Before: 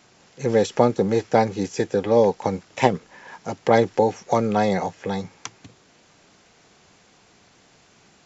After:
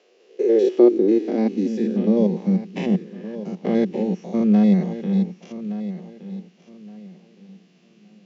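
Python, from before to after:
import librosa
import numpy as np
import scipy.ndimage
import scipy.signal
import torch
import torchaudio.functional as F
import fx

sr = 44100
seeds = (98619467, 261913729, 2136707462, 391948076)

y = fx.spec_steps(x, sr, hold_ms=100)
y = fx.cabinet(y, sr, low_hz=120.0, low_slope=12, high_hz=6000.0, hz=(130.0, 210.0, 360.0, 890.0, 1400.0, 2800.0), db=(-6, 8, 9, -9, -6, 7))
y = fx.echo_feedback(y, sr, ms=1168, feedback_pct=25, wet_db=-13)
y = fx.filter_sweep_highpass(y, sr, from_hz=480.0, to_hz=180.0, start_s=0.06, end_s=2.27, q=7.0)
y = y * librosa.db_to_amplitude(-7.0)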